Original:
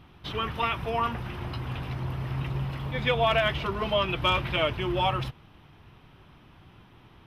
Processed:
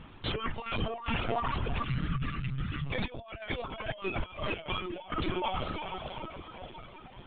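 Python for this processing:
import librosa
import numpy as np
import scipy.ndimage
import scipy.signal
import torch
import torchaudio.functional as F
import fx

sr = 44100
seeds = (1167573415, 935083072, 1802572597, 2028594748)

y = fx.echo_diffused(x, sr, ms=451, feedback_pct=49, wet_db=-4)
y = fx.dereverb_blind(y, sr, rt60_s=1.9)
y = fx.over_compress(y, sr, threshold_db=-33.0, ratio=-0.5)
y = fx.spec_box(y, sr, start_s=1.84, length_s=1.01, low_hz=360.0, high_hz=1100.0, gain_db=-18)
y = fx.lpc_vocoder(y, sr, seeds[0], excitation='pitch_kept', order=16)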